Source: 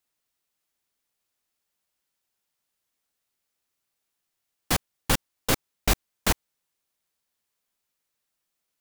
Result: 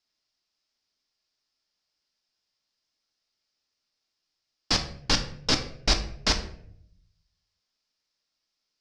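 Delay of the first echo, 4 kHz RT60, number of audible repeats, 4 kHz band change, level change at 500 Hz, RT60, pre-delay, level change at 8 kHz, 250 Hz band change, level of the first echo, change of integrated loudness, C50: none, 0.40 s, none, +6.0 dB, -2.0 dB, 0.65 s, 3 ms, -2.5 dB, -1.0 dB, none, +1.0 dB, 11.0 dB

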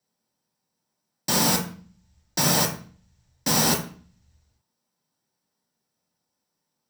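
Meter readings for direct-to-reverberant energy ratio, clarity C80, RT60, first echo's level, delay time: 0.0 dB, 14.0 dB, 0.45 s, none, none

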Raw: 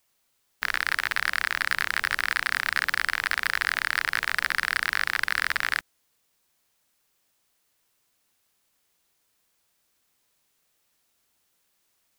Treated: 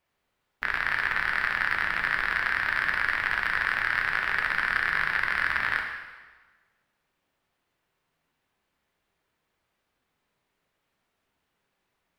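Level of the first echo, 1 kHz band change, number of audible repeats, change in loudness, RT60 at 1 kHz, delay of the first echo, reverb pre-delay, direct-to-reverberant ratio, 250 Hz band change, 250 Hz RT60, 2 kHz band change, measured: none, +1.0 dB, none, 0.0 dB, 1.3 s, none, 5 ms, 1.5 dB, +3.0 dB, 1.4 s, +0.5 dB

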